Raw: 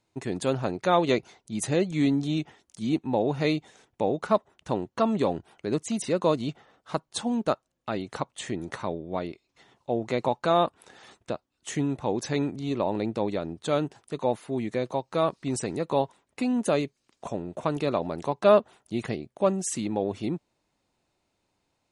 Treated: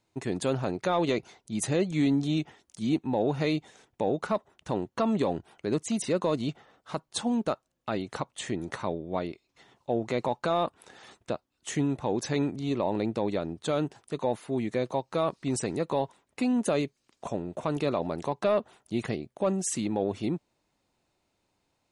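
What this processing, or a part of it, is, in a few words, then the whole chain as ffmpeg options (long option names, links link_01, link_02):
soft clipper into limiter: -af "asoftclip=type=tanh:threshold=-8dB,alimiter=limit=-16.5dB:level=0:latency=1:release=35"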